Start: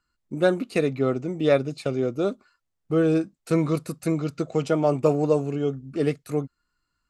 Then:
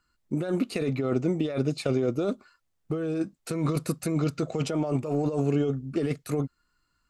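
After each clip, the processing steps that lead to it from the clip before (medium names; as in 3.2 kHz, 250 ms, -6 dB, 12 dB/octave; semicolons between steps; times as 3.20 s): compressor with a negative ratio -26 dBFS, ratio -1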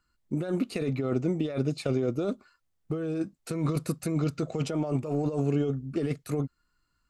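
bass shelf 210 Hz +3.5 dB; trim -3 dB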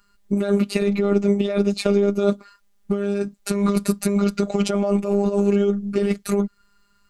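in parallel at +0.5 dB: compression, threshold -34 dBFS, peak gain reduction 12 dB; on the sum: robot voice 201 Hz; trim +9 dB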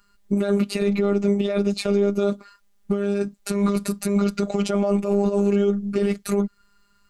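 peak limiter -10 dBFS, peak gain reduction 6.5 dB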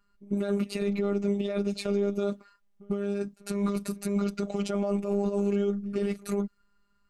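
reverse echo 99 ms -21.5 dB; tape noise reduction on one side only decoder only; trim -7.5 dB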